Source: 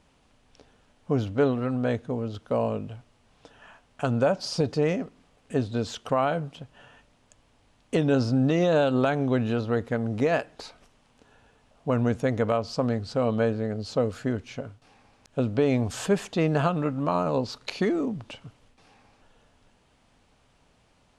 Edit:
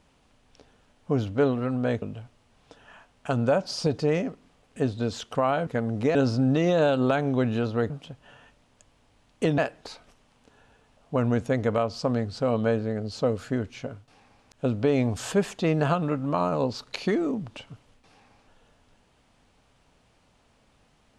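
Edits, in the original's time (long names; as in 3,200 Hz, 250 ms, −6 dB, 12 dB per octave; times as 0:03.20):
0:02.02–0:02.76: remove
0:06.41–0:08.09: swap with 0:09.84–0:10.32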